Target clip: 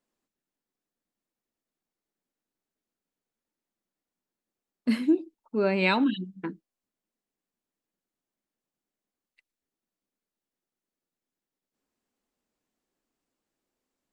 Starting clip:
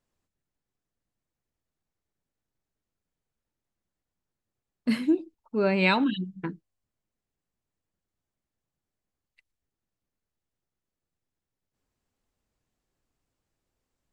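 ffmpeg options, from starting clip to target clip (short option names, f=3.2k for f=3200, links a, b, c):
-af "lowshelf=f=160:t=q:w=1.5:g=-11.5,volume=-1.5dB"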